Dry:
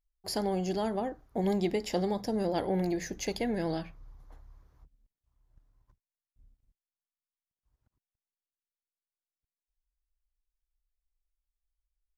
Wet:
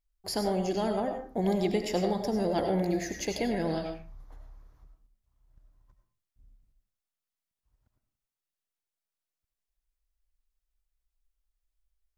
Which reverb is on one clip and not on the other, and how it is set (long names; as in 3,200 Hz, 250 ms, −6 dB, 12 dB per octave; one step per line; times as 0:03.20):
comb and all-pass reverb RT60 0.4 s, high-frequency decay 0.6×, pre-delay 55 ms, DRR 4.5 dB
level +1 dB